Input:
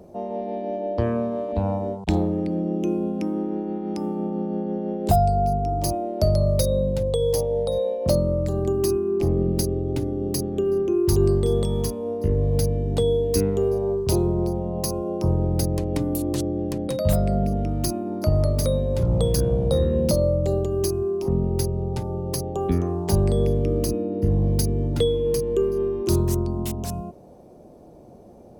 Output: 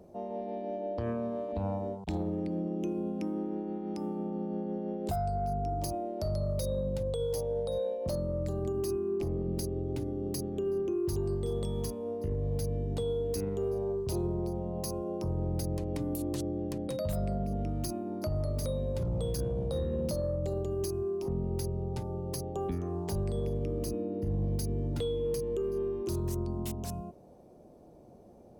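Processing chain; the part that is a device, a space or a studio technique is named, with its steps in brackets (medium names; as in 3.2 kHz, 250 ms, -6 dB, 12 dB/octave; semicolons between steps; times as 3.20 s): soft clipper into limiter (saturation -9 dBFS, distortion -26 dB; peak limiter -17 dBFS, peak gain reduction 6.5 dB); trim -8 dB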